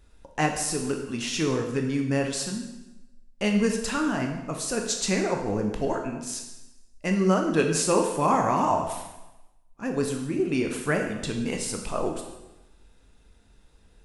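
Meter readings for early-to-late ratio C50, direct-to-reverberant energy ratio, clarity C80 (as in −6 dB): 5.5 dB, 2.5 dB, 7.5 dB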